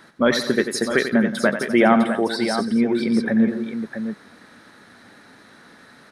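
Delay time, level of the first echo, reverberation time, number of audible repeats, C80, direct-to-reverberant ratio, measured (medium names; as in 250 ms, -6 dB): 91 ms, -10.0 dB, no reverb, 4, no reverb, no reverb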